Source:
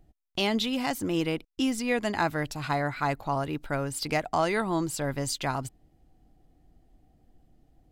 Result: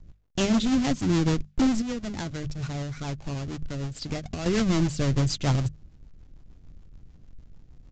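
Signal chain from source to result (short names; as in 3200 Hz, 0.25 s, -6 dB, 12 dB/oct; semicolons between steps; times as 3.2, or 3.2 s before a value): half-waves squared off; tone controls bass +13 dB, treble +5 dB; notches 50/100/150/200 Hz; 1.81–4.46 compressor 5:1, threshold -25 dBFS, peak gain reduction 11 dB; bit-crush 12-bit; rotary speaker horn 6.7 Hz; wavefolder -12.5 dBFS; downsampling 16000 Hz; gain -3 dB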